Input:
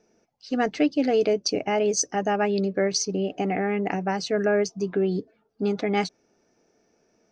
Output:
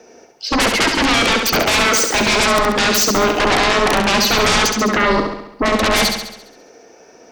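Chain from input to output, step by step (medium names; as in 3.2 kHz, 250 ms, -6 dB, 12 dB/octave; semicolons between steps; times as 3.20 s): tone controls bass -9 dB, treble -2 dB; frequency shift +24 Hz; sine folder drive 19 dB, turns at -11 dBFS; on a send: flutter echo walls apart 11.7 m, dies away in 0.79 s; on the sum: trim -1.5 dB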